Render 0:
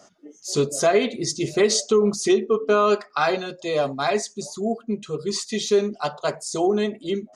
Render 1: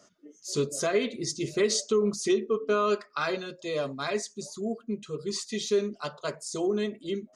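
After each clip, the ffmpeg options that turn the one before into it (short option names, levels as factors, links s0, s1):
-af "equalizer=f=770:w=4.4:g=-12,volume=0.501"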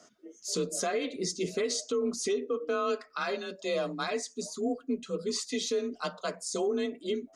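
-af "alimiter=limit=0.0668:level=0:latency=1:release=216,afreqshift=32,volume=1.19"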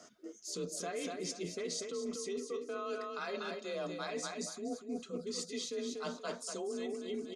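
-af "aecho=1:1:240|480|720|960:0.422|0.135|0.0432|0.0138,areverse,acompressor=threshold=0.0126:ratio=6,areverse,volume=1.12"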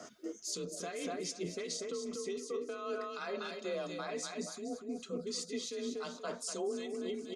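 -filter_complex "[0:a]alimiter=level_in=4.47:limit=0.0631:level=0:latency=1:release=444,volume=0.224,acrossover=split=2000[s0][s1];[s0]aeval=exprs='val(0)*(1-0.5/2+0.5/2*cos(2*PI*2.7*n/s))':c=same[s2];[s1]aeval=exprs='val(0)*(1-0.5/2-0.5/2*cos(2*PI*2.7*n/s))':c=same[s3];[s2][s3]amix=inputs=2:normalize=0,volume=2.82"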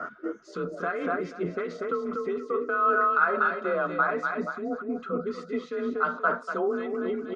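-af "lowpass=f=1400:t=q:w=7.6,volume=2.66"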